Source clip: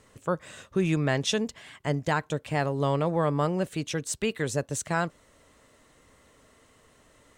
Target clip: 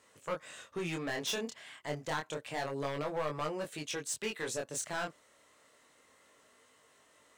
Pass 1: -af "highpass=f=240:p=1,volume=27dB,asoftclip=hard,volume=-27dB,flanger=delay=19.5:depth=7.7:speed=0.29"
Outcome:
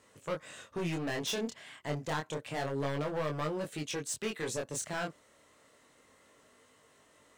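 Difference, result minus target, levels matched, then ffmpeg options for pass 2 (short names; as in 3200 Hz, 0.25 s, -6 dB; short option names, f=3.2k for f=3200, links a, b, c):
250 Hz band +2.5 dB
-af "highpass=f=580:p=1,volume=27dB,asoftclip=hard,volume=-27dB,flanger=delay=19.5:depth=7.7:speed=0.29"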